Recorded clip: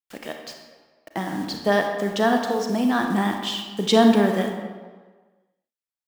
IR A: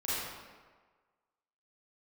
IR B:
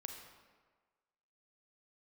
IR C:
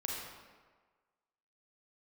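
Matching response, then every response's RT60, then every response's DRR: B; 1.5 s, 1.5 s, 1.5 s; -11.0 dB, 3.5 dB, -2.5 dB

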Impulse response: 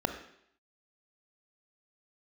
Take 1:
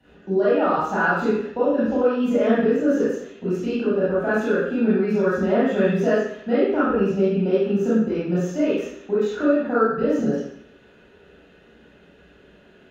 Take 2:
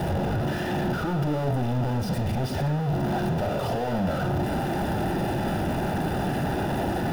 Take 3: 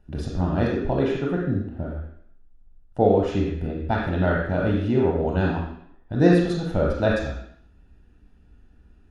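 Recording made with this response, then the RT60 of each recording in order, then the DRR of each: 2; 0.70 s, 0.70 s, 0.70 s; -11.0 dB, 7.0 dB, -2.0 dB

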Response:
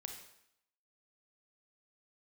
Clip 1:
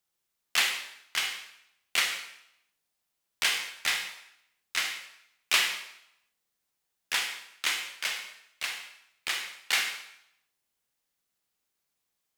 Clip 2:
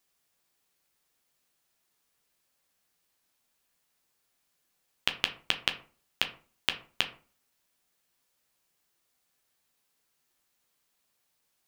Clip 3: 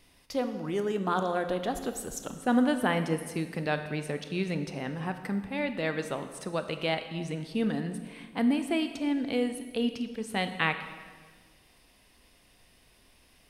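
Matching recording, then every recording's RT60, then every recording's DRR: 1; 0.75 s, 0.40 s, 1.5 s; 3.5 dB, 5.5 dB, 8.0 dB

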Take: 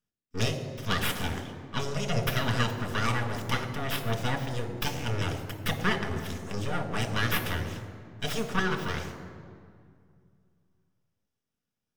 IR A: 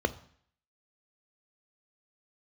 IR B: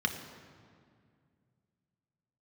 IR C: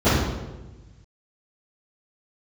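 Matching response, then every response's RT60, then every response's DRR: B; 0.60 s, 2.1 s, 1.2 s; 12.0 dB, 4.5 dB, -21.0 dB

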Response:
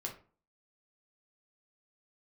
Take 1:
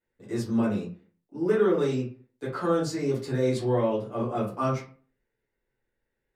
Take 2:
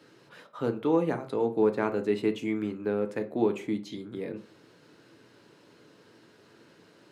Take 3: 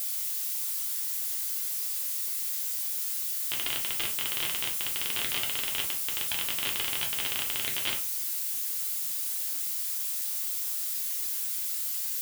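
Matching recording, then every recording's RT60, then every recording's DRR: 3; 0.40 s, 0.40 s, 0.40 s; -9.0 dB, 6.5 dB, -0.5 dB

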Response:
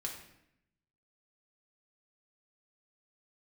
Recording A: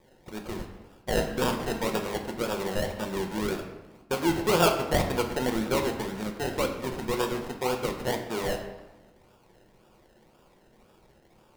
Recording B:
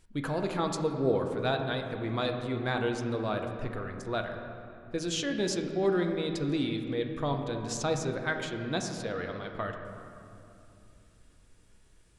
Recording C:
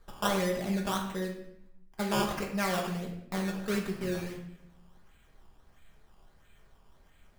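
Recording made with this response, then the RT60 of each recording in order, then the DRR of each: C; 1.2 s, 2.9 s, 0.75 s; 3.5 dB, 3.5 dB, -0.5 dB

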